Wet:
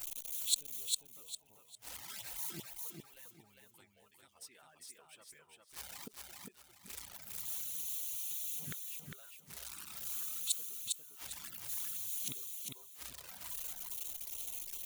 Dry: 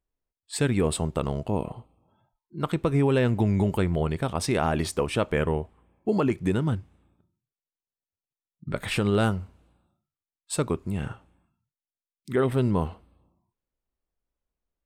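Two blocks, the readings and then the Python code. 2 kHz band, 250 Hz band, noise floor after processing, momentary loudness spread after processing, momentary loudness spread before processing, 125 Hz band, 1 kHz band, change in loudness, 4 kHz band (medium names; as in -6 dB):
-19.0 dB, -32.5 dB, -66 dBFS, 18 LU, 12 LU, -32.5 dB, -25.5 dB, -13.0 dB, -4.5 dB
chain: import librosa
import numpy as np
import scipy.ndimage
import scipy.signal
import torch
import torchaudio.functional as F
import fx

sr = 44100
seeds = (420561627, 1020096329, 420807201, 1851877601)

p1 = x + 0.5 * 10.0 ** (-39.5 / 20.0) * np.sign(x)
p2 = fx.gate_flip(p1, sr, shuts_db=-23.0, range_db=-30)
p3 = scipy.signal.lfilter([1.0, -0.97], [1.0], p2)
p4 = fx.notch(p3, sr, hz=1100.0, q=26.0)
p5 = fx.dereverb_blind(p4, sr, rt60_s=2.0)
p6 = fx.env_flanger(p5, sr, rest_ms=11.3, full_db=-51.5)
p7 = p6 + fx.echo_feedback(p6, sr, ms=403, feedback_pct=29, wet_db=-3, dry=0)
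y = F.gain(torch.from_numpy(p7), 14.0).numpy()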